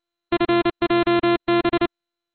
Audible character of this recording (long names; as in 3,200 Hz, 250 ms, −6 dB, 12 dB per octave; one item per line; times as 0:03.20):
a buzz of ramps at a fixed pitch in blocks of 128 samples
MP2